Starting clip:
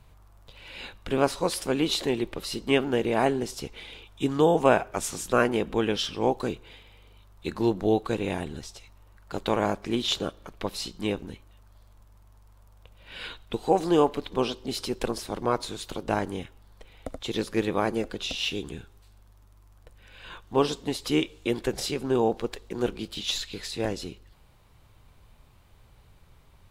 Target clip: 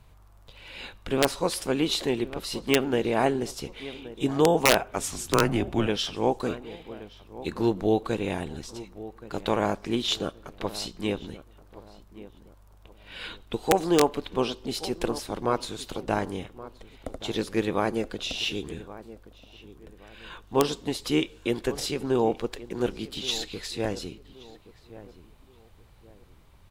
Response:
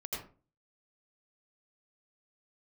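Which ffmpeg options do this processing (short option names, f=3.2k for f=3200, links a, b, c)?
-filter_complex "[0:a]asplit=2[a][b];[b]adelay=1124,lowpass=f=1.5k:p=1,volume=-16dB,asplit=2[c][d];[d]adelay=1124,lowpass=f=1.5k:p=1,volume=0.35,asplit=2[e][f];[f]adelay=1124,lowpass=f=1.5k:p=1,volume=0.35[g];[a][c][e][g]amix=inputs=4:normalize=0,aeval=exprs='(mod(2.82*val(0)+1,2)-1)/2.82':c=same,asettb=1/sr,asplit=3[h][i][j];[h]atrim=end=5.034[k];[i]atrim=start=5.03:end=5.87,asetpts=PTS-STARTPTS,afade=t=in:d=0.004:c=qsin,afade=t=out:st=0.836:d=0.004:c=qsin,afreqshift=-110[l];[j]atrim=start=5.866[m];[k][l]acrossfade=d=0.004:c1=hsin:c2=qsin[n];[n][m]acrossfade=d=0.004:c1=qsin:c2=hsin"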